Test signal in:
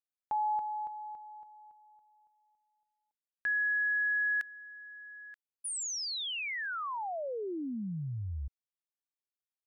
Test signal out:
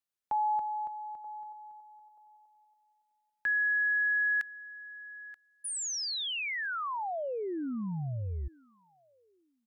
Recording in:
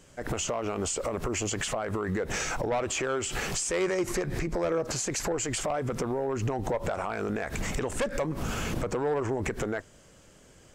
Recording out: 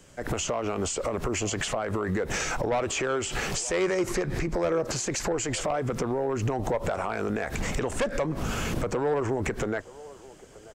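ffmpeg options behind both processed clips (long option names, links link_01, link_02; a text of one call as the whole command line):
ffmpeg -i in.wav -filter_complex "[0:a]acrossover=split=330|1300|7800[link_01][link_02][link_03][link_04];[link_02]aecho=1:1:932|1864:0.158|0.0285[link_05];[link_04]alimiter=level_in=14dB:limit=-24dB:level=0:latency=1:release=493,volume=-14dB[link_06];[link_01][link_05][link_03][link_06]amix=inputs=4:normalize=0,volume=2dB" out.wav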